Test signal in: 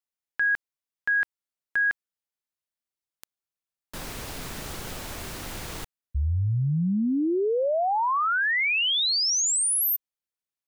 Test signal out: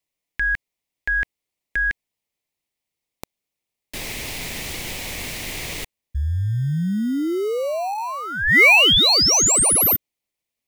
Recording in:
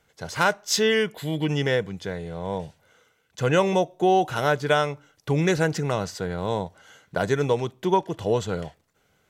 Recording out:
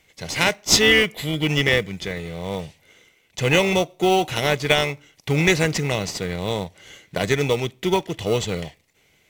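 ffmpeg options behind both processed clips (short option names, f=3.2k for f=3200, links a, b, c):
-filter_complex "[0:a]highshelf=f=1.7k:t=q:w=3:g=7,asplit=2[a][b];[b]acrusher=samples=26:mix=1:aa=0.000001,volume=-9.5dB[c];[a][c]amix=inputs=2:normalize=0"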